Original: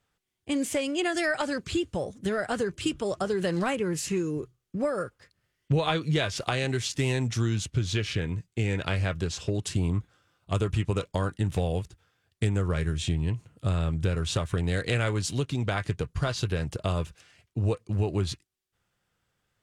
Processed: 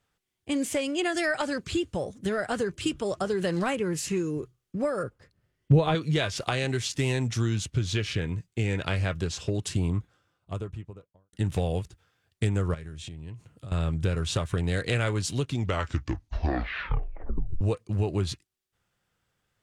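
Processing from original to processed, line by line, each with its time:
5.03–5.95 tilt shelf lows +6 dB, about 900 Hz
9.73–11.33 studio fade out
12.74–13.72 compressor 8:1, threshold -37 dBFS
15.48 tape stop 2.13 s

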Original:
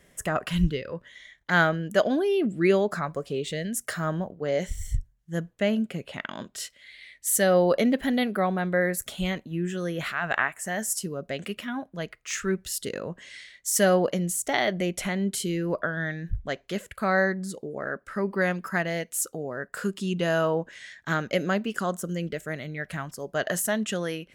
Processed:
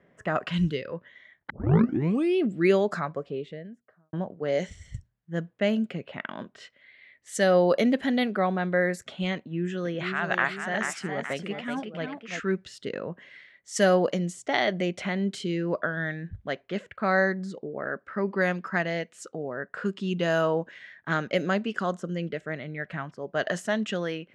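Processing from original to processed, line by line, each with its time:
1.5 tape start 0.90 s
2.93–4.13 studio fade out
9.36–12.4 echoes that change speed 0.488 s, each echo +1 st, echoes 2, each echo -6 dB
whole clip: LPF 9500 Hz 12 dB/oct; low-pass opened by the level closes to 1500 Hz, open at -18.5 dBFS; HPF 120 Hz 12 dB/oct

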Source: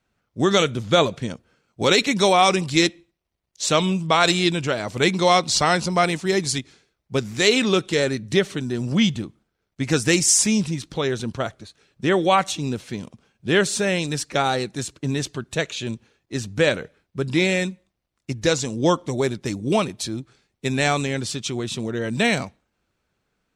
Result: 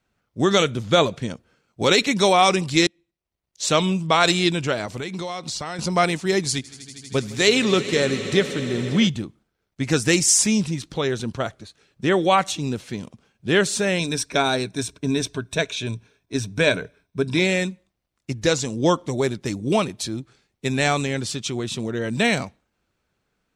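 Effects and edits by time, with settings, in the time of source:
2.87–3.71 fade in, from -23 dB
4.85–5.79 compressor 8:1, threshold -26 dBFS
6.48–9.08 swelling echo 80 ms, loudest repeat 5, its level -18 dB
13.99–17.39 ripple EQ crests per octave 1.6, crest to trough 9 dB

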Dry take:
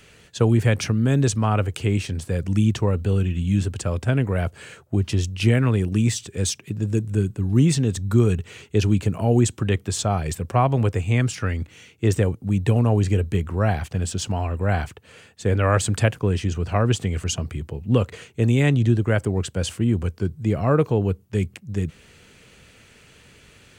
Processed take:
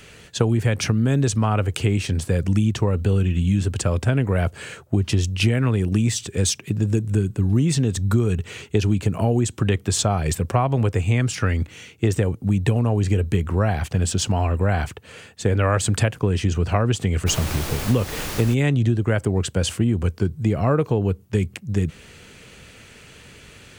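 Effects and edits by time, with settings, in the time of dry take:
17.26–18.53 added noise pink -34 dBFS
whole clip: compressor 5:1, threshold -21 dBFS; gain +5.5 dB

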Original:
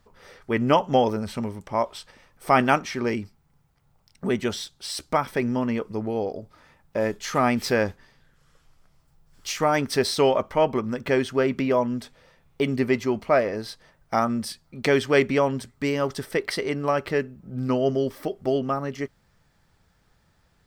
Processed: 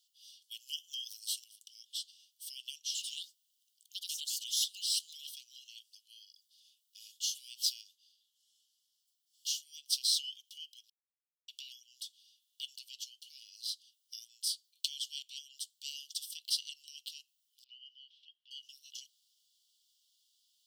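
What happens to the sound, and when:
0.51–1.44 high shelf 5600 Hz +11 dB
2.8–6.38 echoes that change speed 0.102 s, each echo +4 st, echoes 2
7.81–9.88 tilt shelf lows +4.5 dB
10.9–11.48 mute
17.64–18.51 LPF 2800 Hz 24 dB/oct
whole clip: compressor 4:1, threshold -22 dBFS; Chebyshev high-pass 2900 Hz, order 8; gain +1.5 dB

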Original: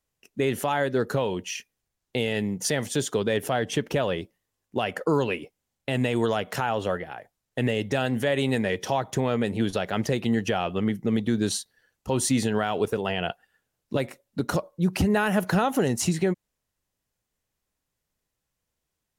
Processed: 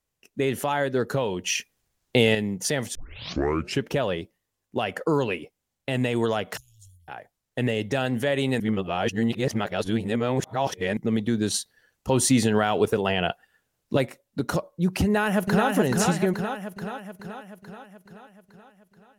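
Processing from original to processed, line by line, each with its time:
1.44–2.35 gain +7.5 dB
2.95 tape start 0.89 s
6.57–7.08 inverse Chebyshev band-stop 270–1800 Hz, stop band 70 dB
8.6–10.97 reverse
11.54–14.05 gain +3.5 dB
15.04–15.69 echo throw 0.43 s, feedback 60%, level -3 dB

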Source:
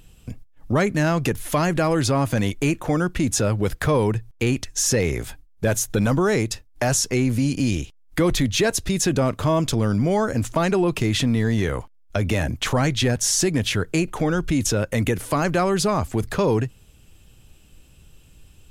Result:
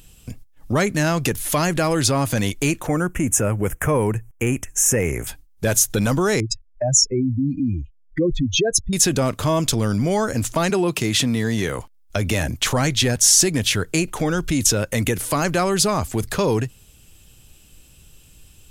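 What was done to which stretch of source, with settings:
2.87–5.27 Butterworth band-stop 4200 Hz, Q 0.96
6.4–8.93 spectral contrast raised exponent 2.8
10.7–11.79 HPF 110 Hz
whole clip: high shelf 3600 Hz +9.5 dB

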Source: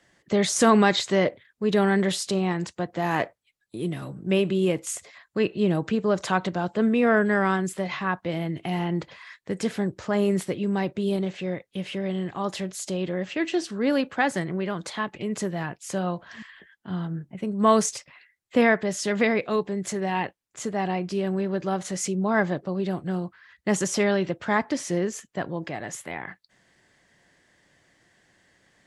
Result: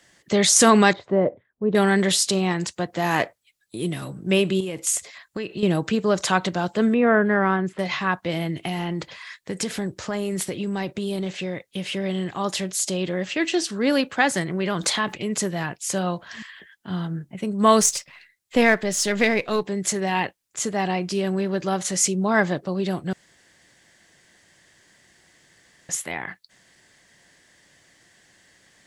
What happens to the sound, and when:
0.93–1.75 Chebyshev low-pass 710 Hz
4.6–5.63 compressor 12:1, threshold -27 dBFS
6.94–7.79 LPF 1800 Hz
8.61–11.87 compressor, threshold -25 dBFS
14.6–15.14 fast leveller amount 50%
17.81–19.64 half-wave gain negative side -3 dB
23.13–25.89 room tone
whole clip: high shelf 2900 Hz +9.5 dB; gain +2 dB

